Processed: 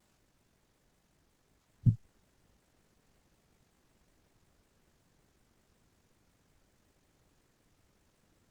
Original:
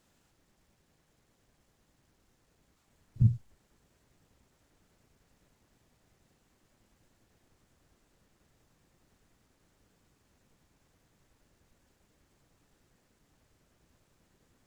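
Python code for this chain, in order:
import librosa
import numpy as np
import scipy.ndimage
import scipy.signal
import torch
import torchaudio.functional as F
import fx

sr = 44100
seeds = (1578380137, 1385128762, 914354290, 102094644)

y = fx.stretch_grains(x, sr, factor=0.58, grain_ms=41.0)
y = fx.vibrato_shape(y, sr, shape='saw_down', rate_hz=5.4, depth_cents=250.0)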